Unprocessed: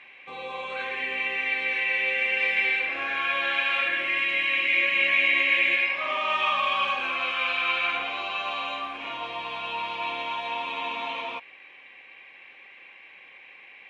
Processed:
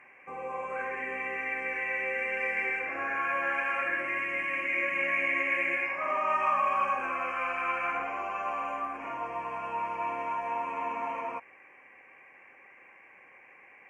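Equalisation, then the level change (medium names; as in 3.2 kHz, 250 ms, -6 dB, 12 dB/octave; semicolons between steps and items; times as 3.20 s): Butterworth band-stop 3.7 kHz, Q 0.72; 0.0 dB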